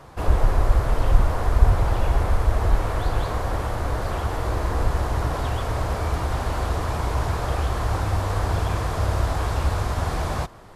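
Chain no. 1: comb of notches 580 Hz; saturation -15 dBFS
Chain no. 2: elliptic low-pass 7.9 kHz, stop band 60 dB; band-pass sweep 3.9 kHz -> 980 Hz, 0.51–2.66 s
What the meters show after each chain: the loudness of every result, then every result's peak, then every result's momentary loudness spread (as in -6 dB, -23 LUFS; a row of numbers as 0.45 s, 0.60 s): -28.0 LUFS, -36.5 LUFS; -15.0 dBFS, -23.0 dBFS; 2 LU, 7 LU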